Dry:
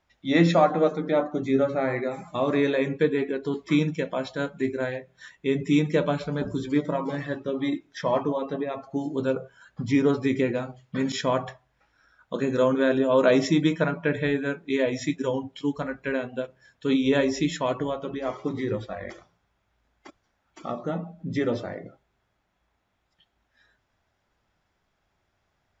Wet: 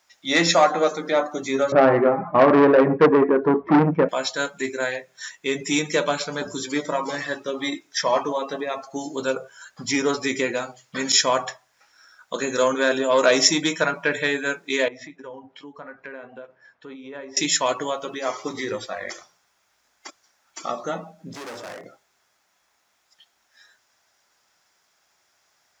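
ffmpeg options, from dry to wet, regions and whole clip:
ffmpeg -i in.wav -filter_complex "[0:a]asettb=1/sr,asplit=3[link_01][link_02][link_03];[link_01]atrim=end=1.724[link_04];[link_02]atrim=start=1.72:end=4.09,asetpts=PTS-STARTPTS,afade=type=in:duration=0.004:curve=qsin,afade=type=out:start_time=2.366:duration=0.004:curve=qsin,lowpass=frequency=1400:width=0.5412,lowpass=frequency=1400:width=1.3066,lowshelf=frequency=440:gain=10.5,acontrast=74[link_05];[link_03]atrim=start=4.086[link_06];[link_04][link_05]acrossfade=duration=0.004:curve1=hsin:curve2=qsin[link_07];[link_07][link_06]acrossfade=duration=0.004:curve1=qsin:curve2=hsin,asettb=1/sr,asplit=3[link_08][link_09][link_10];[link_08]atrim=end=14.884[link_11];[link_09]atrim=start=14.88:end=17.37,asetpts=PTS-STARTPTS,afade=type=in:duration=0.004:curve=qsin,afade=type=out:start_time=2.486:duration=0.004:curve=qsin,lowpass=1600,acompressor=threshold=-40dB:ratio=3:attack=3.2:release=140:knee=1:detection=peak[link_12];[link_10]atrim=start=17.366[link_13];[link_11][link_12]acrossfade=duration=0.004:curve1=hsin:curve2=qsin[link_14];[link_14][link_13]acrossfade=duration=0.004:curve1=qsin:curve2=hsin,asettb=1/sr,asplit=3[link_15][link_16][link_17];[link_15]atrim=end=21.334[link_18];[link_16]atrim=start=21.33:end=21.84,asetpts=PTS-STARTPTS,afade=type=in:duration=0.004:curve=qsin,afade=type=out:start_time=0.506:duration=0.004:curve=qsin,equalizer=frequency=4800:width=0.77:gain=-12.5,acompressor=threshold=-29dB:ratio=2:attack=3.2:release=140:knee=1:detection=peak,asoftclip=type=hard:threshold=-36dB[link_19];[link_17]atrim=start=21.836[link_20];[link_18][link_19]acrossfade=duration=0.004:curve1=hsin:curve2=qsin[link_21];[link_21][link_20]acrossfade=duration=0.004:curve1=qsin:curve2=hsin,acontrast=70,highpass=frequency=1400:poles=1,highshelf=frequency=4300:width_type=q:width=1.5:gain=6.5,volume=4.5dB" out.wav

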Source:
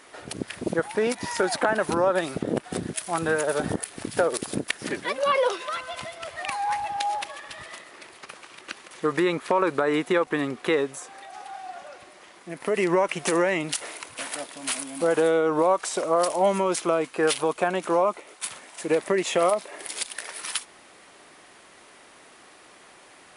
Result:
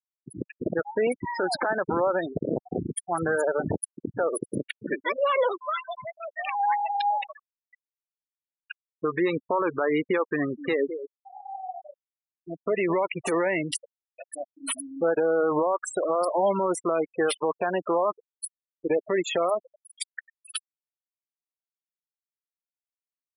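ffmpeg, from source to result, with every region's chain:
ffmpeg -i in.wav -filter_complex "[0:a]asettb=1/sr,asplit=3[link_01][link_02][link_03];[link_01]atrim=end=10.374[link_04];[link_02]atrim=start=10.37:end=12.95,asetpts=PTS-STARTPTS,afade=type=in:duration=0.004:curve=qsin,afade=type=out:start_time=2.576:duration=0.004:curve=qsin,equalizer=frequency=440:width=7.9:gain=-2.5,asplit=2[link_05][link_06];[link_06]adelay=209,lowpass=frequency=3500:poles=1,volume=-12dB,asplit=2[link_07][link_08];[link_08]adelay=209,lowpass=frequency=3500:poles=1,volume=0.17[link_09];[link_05][link_07][link_09]amix=inputs=3:normalize=0,atrim=end_sample=113778[link_10];[link_03]atrim=start=12.946[link_11];[link_04][link_10]acrossfade=duration=0.004:curve1=hsin:curve2=qsin[link_12];[link_12][link_11]acrossfade=duration=0.004:curve1=qsin:curve2=hsin,afftfilt=real='re*gte(hypot(re,im),0.0794)':imag='im*gte(hypot(re,im),0.0794)':win_size=1024:overlap=0.75,equalizer=frequency=220:width_type=o:width=0.78:gain=-4,alimiter=limit=-19dB:level=0:latency=1:release=74,volume=3dB" out.wav

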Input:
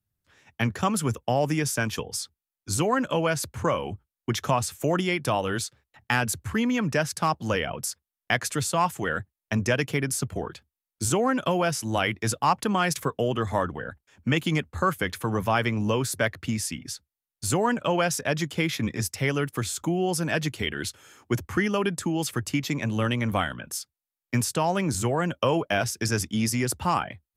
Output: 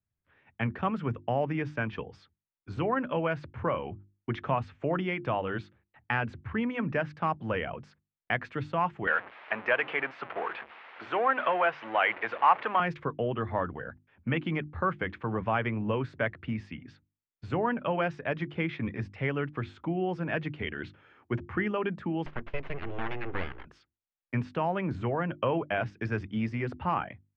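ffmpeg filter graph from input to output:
ffmpeg -i in.wav -filter_complex "[0:a]asettb=1/sr,asplit=3[link_01][link_02][link_03];[link_01]atrim=end=9.074[link_04];[link_02]atrim=start=9.07:end=12.8,asetpts=PTS-STARTPTS,afade=type=in:duration=0.004:curve=qsin,afade=type=out:start_time=3.726:duration=0.004:curve=qsin,aeval=exprs='val(0)+0.5*0.0335*sgn(val(0))':channel_layout=same,highpass=710,lowpass=3000,acontrast=55[link_05];[link_03]atrim=start=12.796[link_06];[link_04][link_05]acrossfade=duration=0.004:curve1=hsin:curve2=qsin[link_07];[link_07][link_06]acrossfade=duration=0.004:curve1=qsin:curve2=hsin,asettb=1/sr,asplit=3[link_08][link_09][link_10];[link_08]atrim=end=22.264[link_11];[link_09]atrim=start=22.26:end=23.65,asetpts=PTS-STARTPTS,afade=type=in:duration=0.004:curve=qsin,afade=type=out:start_time=1.386:duration=0.004:curve=qsin,equalizer=frequency=100:width=3.6:gain=-7,aeval=exprs='abs(val(0))':channel_layout=same[link_12];[link_10]atrim=start=23.646[link_13];[link_11][link_12]acrossfade=duration=0.004:curve1=hsin:curve2=qsin[link_14];[link_14][link_13]acrossfade=duration=0.004:curve1=qsin:curve2=hsin,lowpass=frequency=2600:width=0.5412,lowpass=frequency=2600:width=1.3066,bandreject=frequency=50:width_type=h:width=6,bandreject=frequency=100:width_type=h:width=6,bandreject=frequency=150:width_type=h:width=6,bandreject=frequency=200:width_type=h:width=6,bandreject=frequency=250:width_type=h:width=6,bandreject=frequency=300:width_type=h:width=6,bandreject=frequency=350:width_type=h:width=6,volume=-4.5dB" out.wav

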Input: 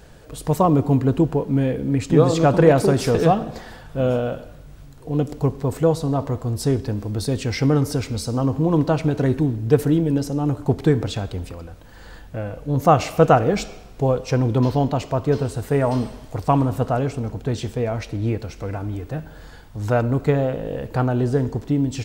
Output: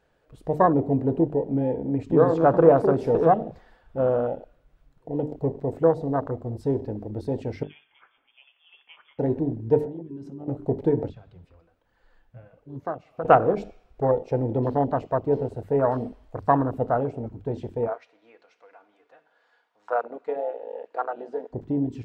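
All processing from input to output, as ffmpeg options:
ffmpeg -i in.wav -filter_complex "[0:a]asettb=1/sr,asplit=3[link_01][link_02][link_03];[link_01]atrim=end=7.634[link_04];[link_02]atrim=start=7.63:end=9.19,asetpts=PTS-STARTPTS,afade=type=in:duration=0.004:curve=qsin,afade=type=out:start_time=1.556:duration=0.004:curve=qsin,highpass=1300,lowpass=frequency=3100:width_type=q:width=0.5098,lowpass=frequency=3100:width_type=q:width=0.6013,lowpass=frequency=3100:width_type=q:width=0.9,lowpass=frequency=3100:width_type=q:width=2.563,afreqshift=-3700[link_05];[link_03]atrim=start=9.186[link_06];[link_04][link_05]acrossfade=duration=0.004:curve1=hsin:curve2=qsin[link_07];[link_07][link_06]acrossfade=duration=0.004:curve1=qsin:curve2=hsin,asettb=1/sr,asplit=3[link_08][link_09][link_10];[link_08]atrim=end=9.814[link_11];[link_09]atrim=start=9.81:end=10.48,asetpts=PTS-STARTPTS,afade=type=in:duration=0.004:curve=qsin,afade=type=out:start_time=0.666:duration=0.004:curve=qsin,lowpass=10000,acompressor=threshold=-27dB:ratio=12:attack=3.2:release=140:knee=1:detection=peak[link_12];[link_10]atrim=start=10.476[link_13];[link_11][link_12]acrossfade=duration=0.004:curve1=hsin:curve2=qsin[link_14];[link_14][link_13]acrossfade=duration=0.004:curve1=qsin:curve2=hsin,asettb=1/sr,asplit=3[link_15][link_16][link_17];[link_15]atrim=end=11.094[link_18];[link_16]atrim=start=11.09:end=13.25,asetpts=PTS-STARTPTS,afade=type=in:duration=0.004:curve=qsin,afade=type=out:start_time=2.156:duration=0.004:curve=qsin,acrossover=split=310|730|5500[link_19][link_20][link_21][link_22];[link_19]acompressor=threshold=-30dB:ratio=3[link_23];[link_20]acompressor=threshold=-31dB:ratio=3[link_24];[link_21]acompressor=threshold=-34dB:ratio=3[link_25];[link_22]acompressor=threshold=-57dB:ratio=3[link_26];[link_23][link_24][link_25][link_26]amix=inputs=4:normalize=0,flanger=delay=0.1:depth=8.3:regen=43:speed=1.2:shape=triangular[link_27];[link_17]atrim=start=13.246[link_28];[link_18][link_27]acrossfade=duration=0.004:curve1=hsin:curve2=qsin[link_29];[link_29][link_28]acrossfade=duration=0.004:curve1=qsin:curve2=hsin,asettb=1/sr,asplit=3[link_30][link_31][link_32];[link_30]atrim=end=17.874[link_33];[link_31]atrim=start=17.87:end=21.53,asetpts=PTS-STARTPTS,afade=type=in:duration=0.004:curve=qsin,afade=type=out:start_time=3.656:duration=0.004:curve=qsin,highpass=650,lowpass=6400,aecho=1:1:4.2:0.33,atrim=end_sample=161406[link_34];[link_32]atrim=start=21.526[link_35];[link_33][link_34]acrossfade=duration=0.004:curve1=hsin:curve2=qsin[link_36];[link_36][link_35]acrossfade=duration=0.004:curve1=qsin:curve2=hsin,bandreject=frequency=50:width_type=h:width=6,bandreject=frequency=100:width_type=h:width=6,bandreject=frequency=150:width_type=h:width=6,bandreject=frequency=200:width_type=h:width=6,bandreject=frequency=250:width_type=h:width=6,bandreject=frequency=300:width_type=h:width=6,bandreject=frequency=350:width_type=h:width=6,bandreject=frequency=400:width_type=h:width=6,bandreject=frequency=450:width_type=h:width=6,afwtdn=0.0631,bass=frequency=250:gain=-9,treble=frequency=4000:gain=-12" out.wav

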